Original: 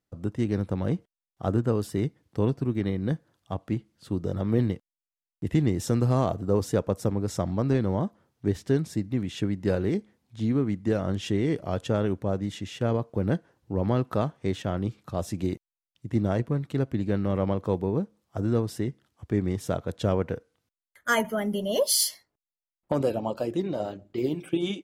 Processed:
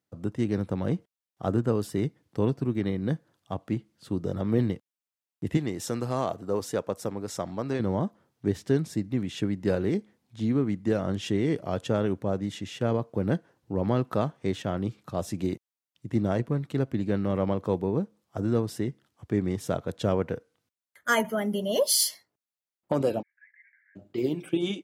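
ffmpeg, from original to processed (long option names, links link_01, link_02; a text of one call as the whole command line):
ffmpeg -i in.wav -filter_complex "[0:a]asettb=1/sr,asplit=3[link_01][link_02][link_03];[link_01]atrim=end=5.574[link_04];[link_02]atrim=start=5.57:end=7.8,asetpts=PTS-STARTPTS,afade=type=in:duration=0.004:curve=qsin,afade=type=out:start_time=2.226:duration=0.004:curve=qsin,lowshelf=frequency=300:gain=-10.5[link_05];[link_03]atrim=start=7.796[link_06];[link_04][link_05]acrossfade=duration=0.004:curve1=hsin:curve2=qsin[link_07];[link_07][link_06]acrossfade=duration=0.004:curve1=qsin:curve2=hsin,asplit=3[link_08][link_09][link_10];[link_08]afade=type=out:start_time=23.21:duration=0.02[link_11];[link_09]asuperpass=centerf=1900:order=12:qfactor=3.1,afade=type=in:start_time=23.21:duration=0.02,afade=type=out:start_time=23.95:duration=0.02[link_12];[link_10]afade=type=in:start_time=23.95:duration=0.02[link_13];[link_11][link_12][link_13]amix=inputs=3:normalize=0,highpass=100" out.wav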